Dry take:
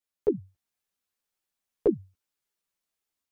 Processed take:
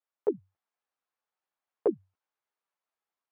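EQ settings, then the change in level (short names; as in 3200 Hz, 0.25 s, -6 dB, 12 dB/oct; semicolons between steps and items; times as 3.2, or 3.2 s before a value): band-pass 920 Hz, Q 1.1; +4.0 dB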